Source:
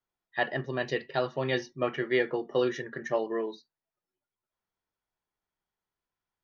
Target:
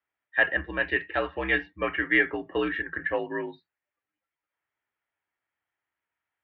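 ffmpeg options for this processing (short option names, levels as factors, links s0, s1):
-af "equalizer=f=125:t=o:w=1:g=4,equalizer=f=250:t=o:w=1:g=-6,equalizer=f=2000:t=o:w=1:g=11,highpass=f=150:t=q:w=0.5412,highpass=f=150:t=q:w=1.307,lowpass=f=3300:t=q:w=0.5176,lowpass=f=3300:t=q:w=0.7071,lowpass=f=3300:t=q:w=1.932,afreqshift=-65"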